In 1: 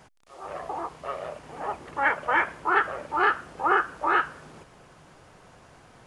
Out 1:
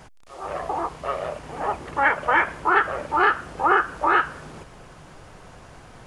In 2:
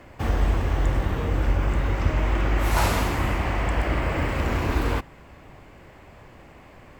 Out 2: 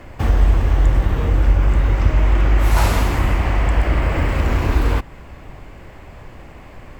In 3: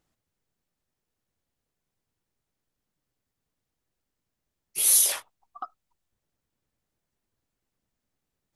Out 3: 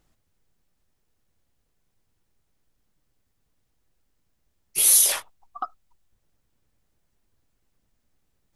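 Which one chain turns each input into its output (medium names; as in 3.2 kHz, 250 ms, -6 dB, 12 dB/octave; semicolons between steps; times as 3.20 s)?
bass shelf 61 Hz +11 dB; in parallel at 0 dB: compression, threshold -24 dBFS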